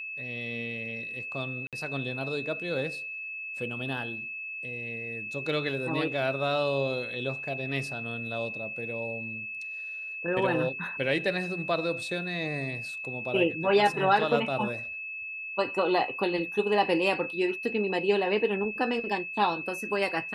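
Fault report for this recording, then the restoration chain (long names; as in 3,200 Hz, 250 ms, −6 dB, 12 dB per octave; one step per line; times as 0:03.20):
whistle 2,600 Hz −35 dBFS
0:01.67–0:01.73: drop-out 57 ms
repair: notch filter 2,600 Hz, Q 30
repair the gap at 0:01.67, 57 ms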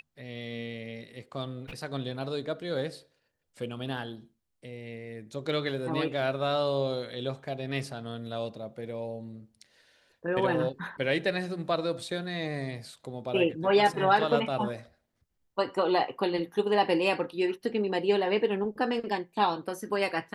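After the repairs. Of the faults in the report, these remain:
none of them is left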